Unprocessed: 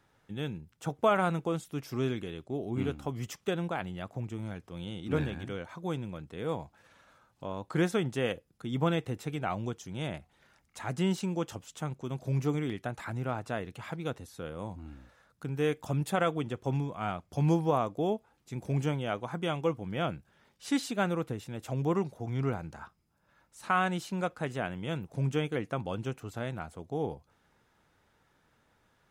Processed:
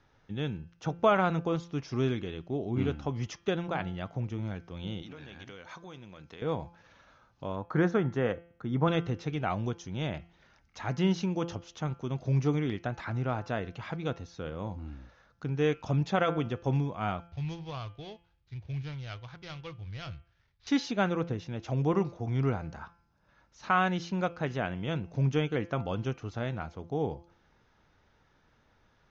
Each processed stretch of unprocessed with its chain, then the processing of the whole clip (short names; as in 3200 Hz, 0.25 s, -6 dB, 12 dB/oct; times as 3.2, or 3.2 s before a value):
5.02–6.42 compressor 12:1, threshold -40 dBFS + tilt +2.5 dB/oct
7.56–8.88 HPF 45 Hz + resonant high shelf 2100 Hz -8 dB, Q 1.5 + notch 5000 Hz, Q 10
17.27–20.67 median filter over 15 samples + EQ curve 110 Hz 0 dB, 200 Hz -20 dB, 850 Hz -16 dB, 1800 Hz -5 dB, 3500 Hz +2 dB, 6300 Hz -6 dB
whole clip: steep low-pass 6500 Hz 96 dB/oct; low shelf 62 Hz +9.5 dB; de-hum 170.9 Hz, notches 19; gain +1.5 dB